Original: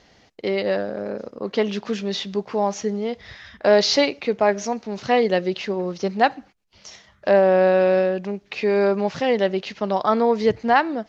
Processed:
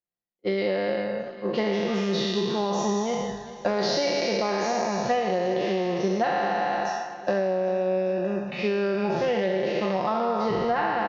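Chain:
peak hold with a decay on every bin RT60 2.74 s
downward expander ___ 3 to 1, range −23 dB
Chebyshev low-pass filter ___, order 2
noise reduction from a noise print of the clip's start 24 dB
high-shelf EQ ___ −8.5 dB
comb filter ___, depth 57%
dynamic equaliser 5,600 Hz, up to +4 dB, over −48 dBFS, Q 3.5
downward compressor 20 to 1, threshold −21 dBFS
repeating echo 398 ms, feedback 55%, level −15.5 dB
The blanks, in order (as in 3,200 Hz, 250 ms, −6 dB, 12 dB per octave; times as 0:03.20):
−20 dBFS, 5,900 Hz, 2,200 Hz, 5.7 ms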